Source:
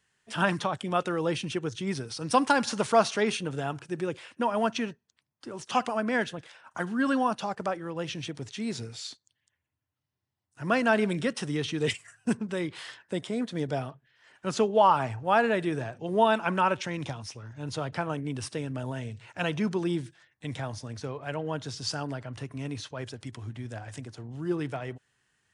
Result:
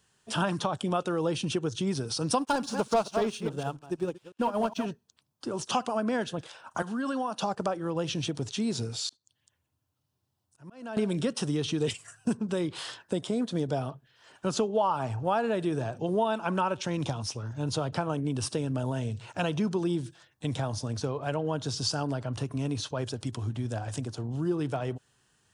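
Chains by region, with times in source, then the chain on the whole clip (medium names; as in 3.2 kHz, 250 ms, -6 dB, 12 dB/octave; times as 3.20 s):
2.39–4.86 s: chunks repeated in reverse 138 ms, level -7.5 dB + waveshaping leveller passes 2 + upward expansion 2.5:1, over -35 dBFS
6.82–7.42 s: high-pass 250 Hz + peaking EQ 360 Hz -8.5 dB 0.26 oct + compression 2.5:1, threshold -36 dBFS
9.09–10.97 s: compression 2.5:1, threshold -44 dBFS + slow attack 322 ms
whole clip: peaking EQ 2 kHz -11 dB 0.67 oct; compression 3:1, threshold -34 dBFS; trim +7 dB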